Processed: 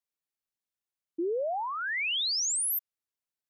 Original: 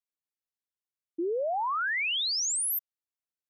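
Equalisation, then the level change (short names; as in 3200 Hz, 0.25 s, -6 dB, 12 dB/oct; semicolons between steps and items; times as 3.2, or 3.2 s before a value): dynamic EQ 1200 Hz, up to -5 dB, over -41 dBFS, Q 1.3; 0.0 dB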